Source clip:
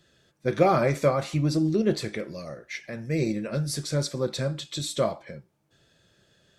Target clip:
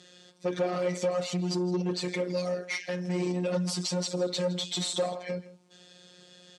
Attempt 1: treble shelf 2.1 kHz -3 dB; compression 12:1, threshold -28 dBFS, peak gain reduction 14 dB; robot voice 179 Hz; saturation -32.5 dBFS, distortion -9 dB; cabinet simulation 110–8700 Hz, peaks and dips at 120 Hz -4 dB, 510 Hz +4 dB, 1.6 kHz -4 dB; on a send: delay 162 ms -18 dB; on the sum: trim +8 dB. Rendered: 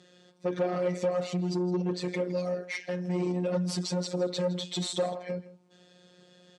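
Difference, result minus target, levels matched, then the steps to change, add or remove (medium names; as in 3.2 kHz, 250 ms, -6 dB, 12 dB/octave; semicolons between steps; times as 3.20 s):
4 kHz band -3.5 dB
change: treble shelf 2.1 kHz +7 dB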